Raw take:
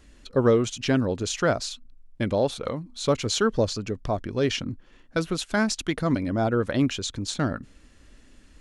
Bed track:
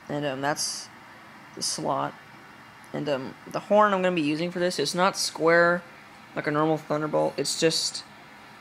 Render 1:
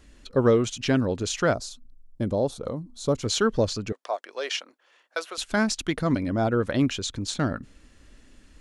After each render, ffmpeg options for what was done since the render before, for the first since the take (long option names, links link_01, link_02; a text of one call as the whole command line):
ffmpeg -i in.wav -filter_complex "[0:a]asettb=1/sr,asplit=3[link_01][link_02][link_03];[link_01]atrim=end=1.544[link_04];[link_02]atrim=start=1.54:end=3.23,asetpts=PTS-STARTPTS,afade=type=in:duration=0.004:curve=qsin,afade=type=out:start_time=1.686:duration=0.004:curve=qsin,equalizer=frequency=2300:width=0.8:gain=-14.5[link_05];[link_03]atrim=start=3.226[link_06];[link_04][link_05]acrossfade=duration=0.004:curve1=hsin:curve2=qsin[link_07];[link_07][link_06]acrossfade=duration=0.004:curve1=qsin:curve2=hsin,asettb=1/sr,asplit=3[link_08][link_09][link_10];[link_08]atrim=end=3.924[link_11];[link_09]atrim=start=3.92:end=5.38,asetpts=PTS-STARTPTS,afade=type=in:duration=0.004:curve=qsin,afade=type=out:start_time=1.456:duration=0.004:curve=qsin,highpass=frequency=540:width=0.5412,highpass=frequency=540:width=1.3066[link_12];[link_10]atrim=start=5.376[link_13];[link_11][link_12]acrossfade=duration=0.004:curve1=hsin:curve2=qsin[link_14];[link_14][link_13]acrossfade=duration=0.004:curve1=qsin:curve2=hsin" out.wav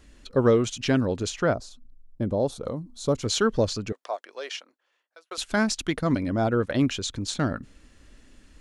ffmpeg -i in.wav -filter_complex "[0:a]asettb=1/sr,asplit=3[link_01][link_02][link_03];[link_01]atrim=end=1.304[link_04];[link_02]atrim=start=1.3:end=2.4,asetpts=PTS-STARTPTS,afade=type=in:duration=0.004:curve=qsin,afade=type=out:start_time=1.096:duration=0.004:curve=qsin,highshelf=frequency=2700:gain=-10[link_05];[link_03]atrim=start=2.396[link_06];[link_04][link_05]acrossfade=duration=0.004:curve1=hsin:curve2=qsin[link_07];[link_07][link_06]acrossfade=duration=0.004:curve1=qsin:curve2=hsin,asplit=3[link_08][link_09][link_10];[link_08]afade=type=out:start_time=5.99:duration=0.02[link_11];[link_09]agate=range=-11dB:threshold=-31dB:ratio=16:release=100:detection=peak,afade=type=in:start_time=5.99:duration=0.02,afade=type=out:start_time=6.78:duration=0.02[link_12];[link_10]afade=type=in:start_time=6.78:duration=0.02[link_13];[link_11][link_12][link_13]amix=inputs=3:normalize=0,asplit=2[link_14][link_15];[link_14]atrim=end=5.31,asetpts=PTS-STARTPTS,afade=type=out:start_time=3.8:duration=1.51[link_16];[link_15]atrim=start=5.31,asetpts=PTS-STARTPTS,afade=type=in:duration=0.004:curve=hsin[link_17];[link_16][link_17]concat=n=2:v=0:a=1" out.wav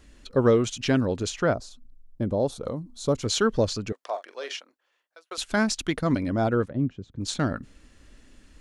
ffmpeg -i in.wav -filter_complex "[0:a]asettb=1/sr,asplit=3[link_01][link_02][link_03];[link_01]atrim=end=4.034[link_04];[link_02]atrim=start=4.03:end=4.54,asetpts=PTS-STARTPTS,afade=type=in:duration=0.004:curve=qsin,afade=type=out:start_time=0.506:duration=0.004:curve=qsin,asplit=2[link_05][link_06];[link_06]adelay=43,volume=-10dB[link_07];[link_05][link_07]amix=inputs=2:normalize=0,atrim=end_sample=22491[link_08];[link_03]atrim=start=4.536[link_09];[link_04][link_08]acrossfade=duration=0.004:curve1=hsin:curve2=qsin[link_10];[link_10][link_09]acrossfade=duration=0.004:curve1=qsin:curve2=hsin,asplit=3[link_11][link_12][link_13];[link_11]afade=type=out:start_time=6.68:duration=0.02[link_14];[link_12]bandpass=frequency=150:width_type=q:width=0.98,afade=type=in:start_time=6.68:duration=0.02,afade=type=out:start_time=7.19:duration=0.02[link_15];[link_13]afade=type=in:start_time=7.19:duration=0.02[link_16];[link_14][link_15][link_16]amix=inputs=3:normalize=0" out.wav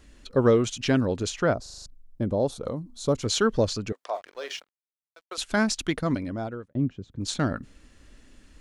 ffmpeg -i in.wav -filter_complex "[0:a]asettb=1/sr,asplit=3[link_01][link_02][link_03];[link_01]atrim=end=4.154[link_04];[link_02]atrim=start=4.15:end=5.35,asetpts=PTS-STARTPTS,afade=type=in:duration=0.004:curve=qsin,afade=type=out:start_time=1.196:duration=0.004:curve=qsin,aeval=exprs='sgn(val(0))*max(abs(val(0))-0.00224,0)':channel_layout=same[link_05];[link_03]atrim=start=5.346[link_06];[link_04][link_05]acrossfade=duration=0.004:curve1=hsin:curve2=qsin[link_07];[link_07][link_06]acrossfade=duration=0.004:curve1=qsin:curve2=hsin,asplit=8[link_08][link_09][link_10][link_11][link_12][link_13][link_14][link_15];[link_08]atrim=end=1.662[link_16];[link_09]atrim=start=1.618:end=1.662[link_17];[link_10]atrim=start=1.618:end=1.662[link_18];[link_11]atrim=start=1.618:end=1.662[link_19];[link_12]atrim=start=1.618:end=1.662[link_20];[link_13]atrim=start=1.618:end=1.662[link_21];[link_14]atrim=start=1.858:end=6.75,asetpts=PTS-STARTPTS,afade=type=out:start_time=4.062:duration=0.83[link_22];[link_15]atrim=start=6.75,asetpts=PTS-STARTPTS,afade=type=in:duration=0.004:curve=hsin[link_23];[link_16][link_17]acrossfade=duration=0.004:curve1=hsin:curve2=hsin[link_24];[link_24][link_18]acrossfade=duration=0.004:curve1=hsin:curve2=hsin[link_25];[link_25][link_19]acrossfade=duration=0.004:curve1=hsin:curve2=hsin[link_26];[link_26][link_20]acrossfade=duration=0.004:curve1=hsin:curve2=hsin[link_27];[link_27][link_21]acrossfade=duration=0.004:curve1=hsin:curve2=hsin[link_28];[link_22][link_23]concat=n=2:v=0:a=1[link_29];[link_28][link_29]acrossfade=duration=0.004:curve1=hsin:curve2=hsin" out.wav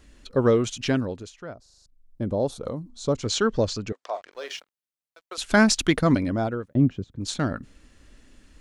ffmpeg -i in.wav -filter_complex "[0:a]asettb=1/sr,asplit=3[link_01][link_02][link_03];[link_01]atrim=end=2.894[link_04];[link_02]atrim=start=2.89:end=4.32,asetpts=PTS-STARTPTS,afade=type=in:duration=0.004:curve=qsin,afade=type=out:start_time=1.426:duration=0.004:curve=qsin,lowpass=frequency=8400:width=0.5412,lowpass=frequency=8400:width=1.3066[link_05];[link_03]atrim=start=4.316[link_06];[link_04][link_05]acrossfade=duration=0.004:curve1=hsin:curve2=qsin[link_07];[link_07][link_06]acrossfade=duration=0.004:curve1=qsin:curve2=hsin,asettb=1/sr,asplit=3[link_08][link_09][link_10];[link_08]atrim=end=5.444[link_11];[link_09]atrim=start=5.44:end=7.04,asetpts=PTS-STARTPTS,afade=type=in:duration=0.004:curve=qsin,afade=type=out:start_time=1.596:duration=0.004:curve=qsin,acontrast=66[link_12];[link_10]atrim=start=7.036[link_13];[link_11][link_12]acrossfade=duration=0.004:curve1=hsin:curve2=qsin[link_14];[link_14][link_13]acrossfade=duration=0.004:curve1=qsin:curve2=hsin,asplit=3[link_15][link_16][link_17];[link_15]atrim=end=1.3,asetpts=PTS-STARTPTS,afade=type=out:start_time=0.88:duration=0.42:silence=0.177828[link_18];[link_16]atrim=start=1.3:end=1.87,asetpts=PTS-STARTPTS,volume=-15dB[link_19];[link_17]atrim=start=1.87,asetpts=PTS-STARTPTS,afade=type=in:duration=0.42:silence=0.177828[link_20];[link_18][link_19][link_20]concat=n=3:v=0:a=1" out.wav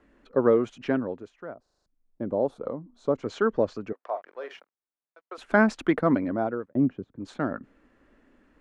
ffmpeg -i in.wav -filter_complex "[0:a]acrossover=split=200 2000:gain=0.178 1 0.0708[link_01][link_02][link_03];[link_01][link_02][link_03]amix=inputs=3:normalize=0" out.wav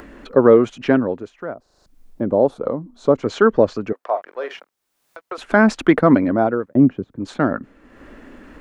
ffmpeg -i in.wav -af "acompressor=mode=upward:threshold=-41dB:ratio=2.5,alimiter=level_in=10dB:limit=-1dB:release=50:level=0:latency=1" out.wav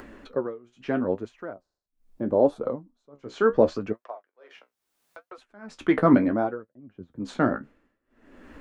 ffmpeg -i in.wav -af "flanger=delay=7.5:depth=9.6:regen=46:speed=0.74:shape=triangular,tremolo=f=0.81:d=0.98" out.wav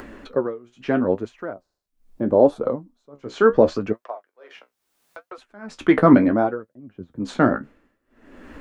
ffmpeg -i in.wav -af "volume=5.5dB,alimiter=limit=-2dB:level=0:latency=1" out.wav